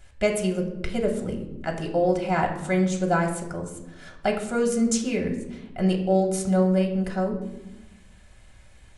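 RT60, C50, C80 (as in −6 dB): 0.95 s, 8.5 dB, 11.0 dB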